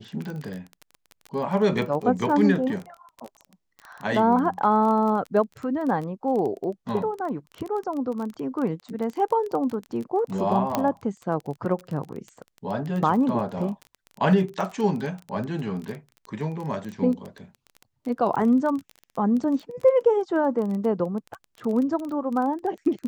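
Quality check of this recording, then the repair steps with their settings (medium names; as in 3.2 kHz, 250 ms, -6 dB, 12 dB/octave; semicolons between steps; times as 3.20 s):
crackle 23 per s -30 dBFS
10.75 s: pop -9 dBFS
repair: de-click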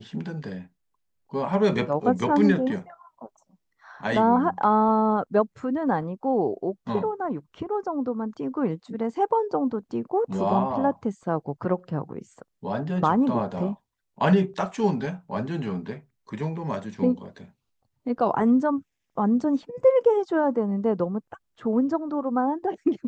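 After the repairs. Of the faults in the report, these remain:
nothing left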